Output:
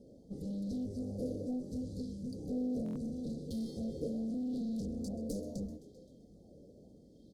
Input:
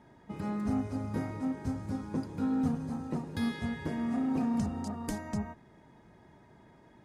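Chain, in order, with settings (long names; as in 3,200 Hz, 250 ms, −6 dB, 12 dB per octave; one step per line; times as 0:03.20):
soft clipping −34 dBFS, distortion −9 dB
time-frequency box erased 0:01.93–0:02.23, 260–2,400 Hz
echo with shifted repeats 125 ms, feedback 64%, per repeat +110 Hz, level −17 dB
asymmetric clip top −41 dBFS
comb filter 3.9 ms, depth 38%
wrong playback speed 25 fps video run at 24 fps
elliptic band-stop filter 530–4,400 Hz, stop band 40 dB
buffer that repeats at 0:02.84, samples 1,024, times 4
auto-filter bell 0.75 Hz 470–4,100 Hz +10 dB
level +1 dB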